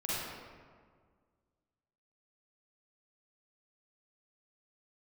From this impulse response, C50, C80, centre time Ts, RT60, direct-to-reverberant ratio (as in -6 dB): -6.0 dB, -2.0 dB, 0.136 s, 1.8 s, -9.0 dB